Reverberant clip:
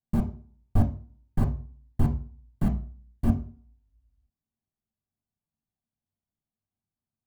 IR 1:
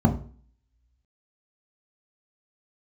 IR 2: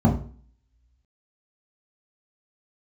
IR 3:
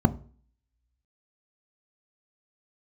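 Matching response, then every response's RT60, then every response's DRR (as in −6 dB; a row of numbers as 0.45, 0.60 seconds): 1; 0.45, 0.45, 0.45 seconds; 1.5, −3.5, 10.5 decibels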